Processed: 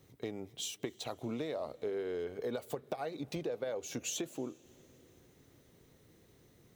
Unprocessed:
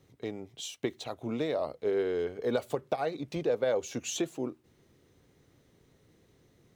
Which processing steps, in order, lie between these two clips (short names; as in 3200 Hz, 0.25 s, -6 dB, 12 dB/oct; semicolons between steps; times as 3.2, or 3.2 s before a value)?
high shelf 11000 Hz +11.5 dB; compressor 5:1, threshold -35 dBFS, peak gain reduction 10.5 dB; on a send: reverb RT60 4.5 s, pre-delay 0.192 s, DRR 23 dB